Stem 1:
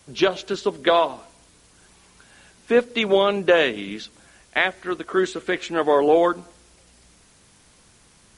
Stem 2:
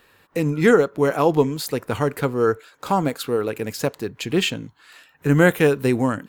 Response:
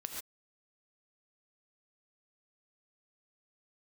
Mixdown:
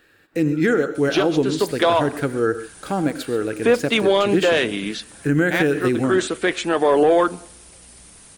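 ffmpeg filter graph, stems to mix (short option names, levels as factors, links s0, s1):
-filter_complex "[0:a]acontrast=69,equalizer=f=9200:w=3.6:g=11.5,adelay=950,volume=0.891[s0];[1:a]equalizer=f=315:t=o:w=0.33:g=8,equalizer=f=1000:t=o:w=0.33:g=-12,equalizer=f=1600:t=o:w=0.33:g=7,equalizer=f=12500:t=o:w=0.33:g=-7,volume=0.562,asplit=3[s1][s2][s3];[s2]volume=0.596[s4];[s3]apad=whole_len=411419[s5];[s0][s5]sidechaincompress=threshold=0.0794:ratio=8:attack=16:release=283[s6];[2:a]atrim=start_sample=2205[s7];[s4][s7]afir=irnorm=-1:irlink=0[s8];[s6][s1][s8]amix=inputs=3:normalize=0,alimiter=limit=0.376:level=0:latency=1:release=76"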